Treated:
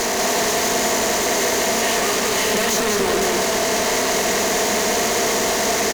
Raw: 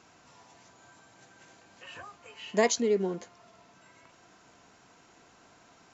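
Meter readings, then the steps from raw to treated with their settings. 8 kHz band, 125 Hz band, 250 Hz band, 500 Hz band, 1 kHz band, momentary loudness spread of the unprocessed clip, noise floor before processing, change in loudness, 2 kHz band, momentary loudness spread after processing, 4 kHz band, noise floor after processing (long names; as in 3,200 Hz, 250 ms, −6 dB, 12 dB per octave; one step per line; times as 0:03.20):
can't be measured, +13.5 dB, +13.0 dB, +14.0 dB, +20.5 dB, 21 LU, −60 dBFS, +11.5 dB, +21.0 dB, 1 LU, +23.5 dB, −21 dBFS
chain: compressor on every frequency bin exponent 0.4
elliptic high-pass filter 200 Hz
high-shelf EQ 5,600 Hz +5 dB
mains-hum notches 60/120/180/240/300/360/420 Hz
fuzz pedal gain 47 dB, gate −54 dBFS
on a send: single-tap delay 191 ms −3.5 dB
on the sum: level −6.5 dB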